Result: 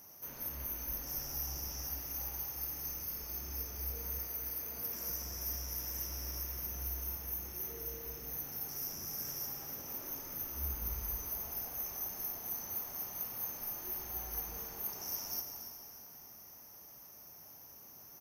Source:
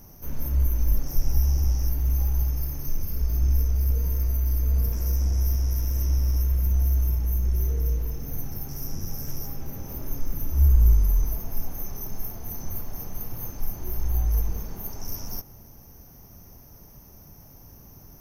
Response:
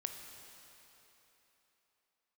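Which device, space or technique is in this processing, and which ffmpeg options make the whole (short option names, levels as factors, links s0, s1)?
cave: -filter_complex "[0:a]asettb=1/sr,asplit=3[s0][s1][s2];[s0]atrim=end=4.184[s3];[s1]atrim=start=4.18:end=5.1,asetpts=PTS-STARTPTS,afade=t=in:d=0.004:c=qsin,afade=t=out:st=0.916:d=0.004:c=qsin,highpass=130[s4];[s2]atrim=start=5.096[s5];[s3][s4]acrossfade=d=0.004:c1=hsin:c2=qsin[s6];[s6][s5]acrossfade=d=0.004:c1=qsin:c2=hsin,aecho=1:1:282:0.237[s7];[1:a]atrim=start_sample=2205[s8];[s7][s8]afir=irnorm=-1:irlink=0,highpass=f=1000:p=1"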